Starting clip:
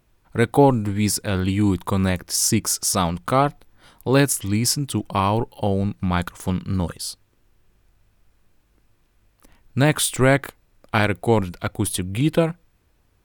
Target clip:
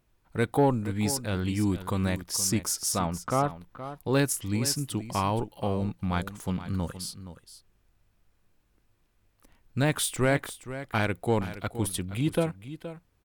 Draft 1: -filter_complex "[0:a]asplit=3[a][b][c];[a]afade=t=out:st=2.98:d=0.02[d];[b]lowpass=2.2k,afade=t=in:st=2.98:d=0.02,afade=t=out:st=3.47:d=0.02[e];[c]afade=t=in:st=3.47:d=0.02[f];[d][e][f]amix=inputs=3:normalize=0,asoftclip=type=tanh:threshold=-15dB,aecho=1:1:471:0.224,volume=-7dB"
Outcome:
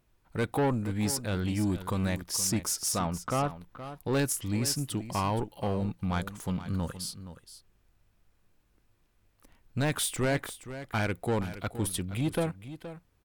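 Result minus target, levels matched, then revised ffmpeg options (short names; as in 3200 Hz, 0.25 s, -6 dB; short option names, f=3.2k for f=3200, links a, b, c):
soft clip: distortion +14 dB
-filter_complex "[0:a]asplit=3[a][b][c];[a]afade=t=out:st=2.98:d=0.02[d];[b]lowpass=2.2k,afade=t=in:st=2.98:d=0.02,afade=t=out:st=3.47:d=0.02[e];[c]afade=t=in:st=3.47:d=0.02[f];[d][e][f]amix=inputs=3:normalize=0,asoftclip=type=tanh:threshold=-4.5dB,aecho=1:1:471:0.224,volume=-7dB"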